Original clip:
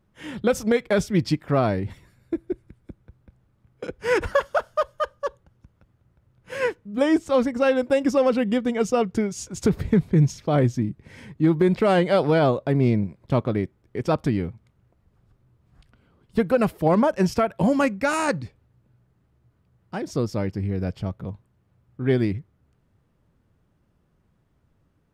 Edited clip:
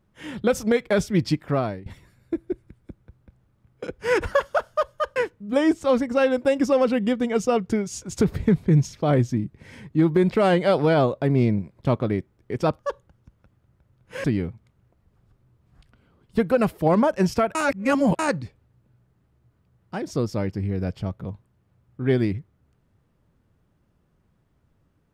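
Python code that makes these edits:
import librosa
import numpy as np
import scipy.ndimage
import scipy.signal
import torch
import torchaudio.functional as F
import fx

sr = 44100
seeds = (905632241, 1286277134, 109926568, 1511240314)

y = fx.edit(x, sr, fx.fade_out_to(start_s=1.46, length_s=0.4, floor_db=-20.0),
    fx.move(start_s=5.16, length_s=1.45, to_s=14.24),
    fx.reverse_span(start_s=17.55, length_s=0.64), tone=tone)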